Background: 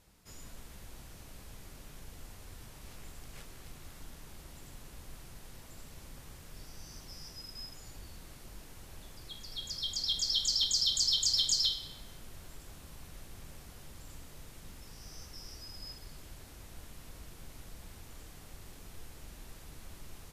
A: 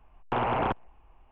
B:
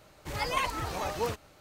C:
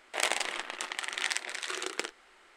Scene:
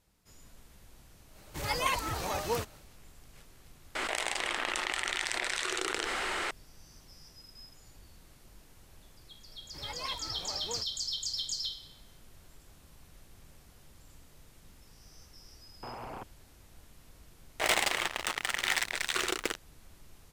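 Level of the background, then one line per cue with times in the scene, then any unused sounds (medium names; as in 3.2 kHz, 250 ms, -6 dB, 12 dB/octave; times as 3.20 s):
background -6.5 dB
1.29 s: add B -1 dB, fades 0.10 s + treble shelf 5.1 kHz +6.5 dB
3.95 s: add C -9 dB + level flattener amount 100%
9.48 s: add B -11 dB
15.51 s: add A -16 dB
17.46 s: add C -12.5 dB + waveshaping leveller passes 5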